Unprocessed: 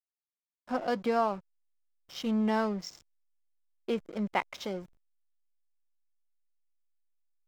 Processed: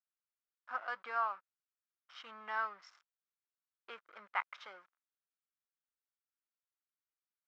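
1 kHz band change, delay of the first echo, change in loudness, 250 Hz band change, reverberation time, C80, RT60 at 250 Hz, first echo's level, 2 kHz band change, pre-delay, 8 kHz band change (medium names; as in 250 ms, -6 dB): -5.5 dB, no echo, -7.5 dB, -36.5 dB, no reverb, no reverb, no reverb, no echo, -1.5 dB, no reverb, no reading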